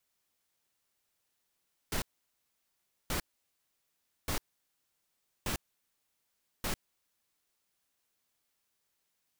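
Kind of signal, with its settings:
noise bursts pink, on 0.10 s, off 1.08 s, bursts 5, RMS −33 dBFS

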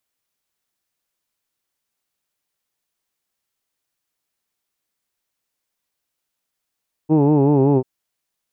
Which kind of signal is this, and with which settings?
vowel from formants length 0.74 s, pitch 151 Hz, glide −2 semitones, F1 360 Hz, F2 870 Hz, F3 2,600 Hz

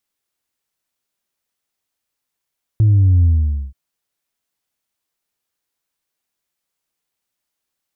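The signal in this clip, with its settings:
bass drop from 110 Hz, over 0.93 s, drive 1 dB, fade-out 0.49 s, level −9 dB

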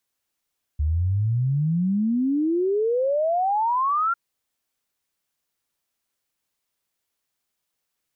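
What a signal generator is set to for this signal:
exponential sine sweep 72 Hz → 1,400 Hz 3.35 s −19 dBFS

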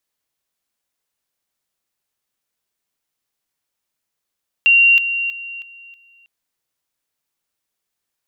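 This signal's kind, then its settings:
level staircase 2,760 Hz −8 dBFS, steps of −10 dB, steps 5, 0.32 s 0.00 s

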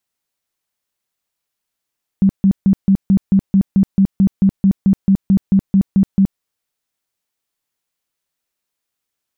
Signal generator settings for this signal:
tone bursts 194 Hz, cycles 14, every 0.22 s, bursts 19, −7.5 dBFS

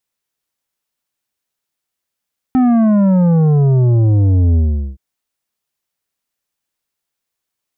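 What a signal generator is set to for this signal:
bass drop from 260 Hz, over 2.42 s, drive 9 dB, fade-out 0.41 s, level −9.5 dB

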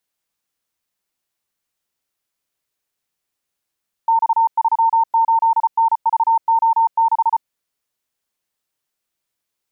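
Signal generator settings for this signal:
Morse code "X38NVO6" 34 words per minute 909 Hz −11 dBFS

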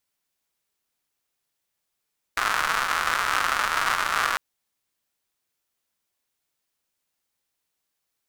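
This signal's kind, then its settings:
rain-like ticks over hiss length 2.00 s, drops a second 220, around 1,300 Hz, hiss −19.5 dB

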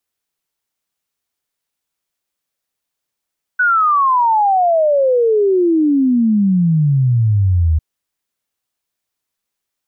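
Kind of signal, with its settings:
exponential sine sweep 1,500 Hz → 76 Hz 4.20 s −10 dBFS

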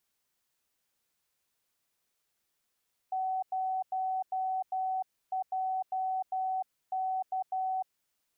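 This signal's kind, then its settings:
Morse code "0JK" 12 words per minute 754 Hz −29 dBFS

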